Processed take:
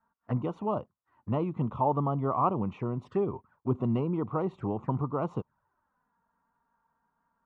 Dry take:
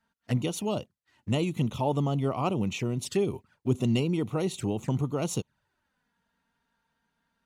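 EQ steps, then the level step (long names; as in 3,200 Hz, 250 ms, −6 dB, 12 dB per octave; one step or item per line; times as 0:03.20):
low-pass with resonance 1,100 Hz, resonance Q 3.8
−3.0 dB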